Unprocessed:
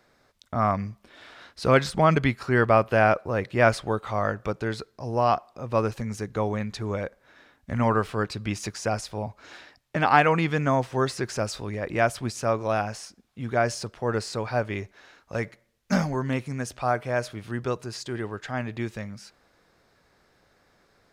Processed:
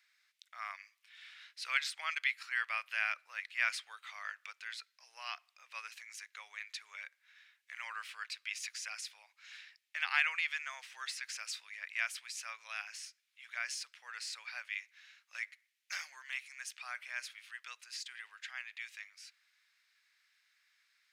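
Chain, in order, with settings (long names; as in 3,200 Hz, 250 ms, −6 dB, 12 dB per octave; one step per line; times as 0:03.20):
four-pole ladder high-pass 1,800 Hz, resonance 40%
level +1.5 dB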